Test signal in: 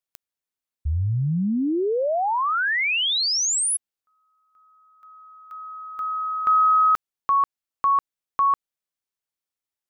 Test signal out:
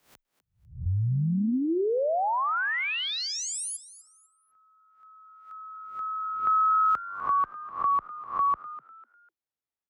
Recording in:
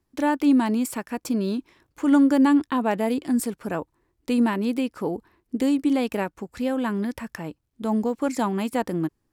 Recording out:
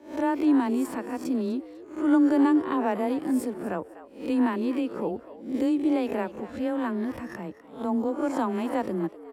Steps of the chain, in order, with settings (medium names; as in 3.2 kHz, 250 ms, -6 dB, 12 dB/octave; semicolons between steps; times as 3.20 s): reverse spectral sustain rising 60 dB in 0.42 s; treble shelf 2.4 kHz -10.5 dB; frequency shift +16 Hz; on a send: frequency-shifting echo 249 ms, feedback 31%, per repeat +97 Hz, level -16 dB; on the sum: trim -3 dB